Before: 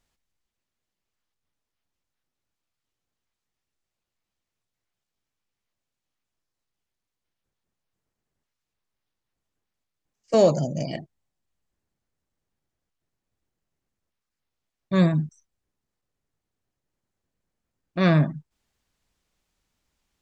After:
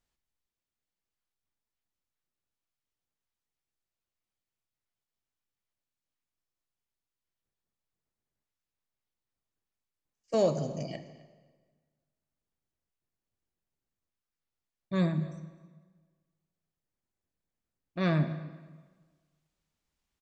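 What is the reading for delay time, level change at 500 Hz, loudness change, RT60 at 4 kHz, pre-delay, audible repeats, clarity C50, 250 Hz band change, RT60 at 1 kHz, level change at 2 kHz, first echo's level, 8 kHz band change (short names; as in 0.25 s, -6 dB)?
0.259 s, -8.0 dB, -8.5 dB, 1.2 s, 40 ms, 1, 11.0 dB, -8.0 dB, 1.4 s, -8.0 dB, -21.5 dB, n/a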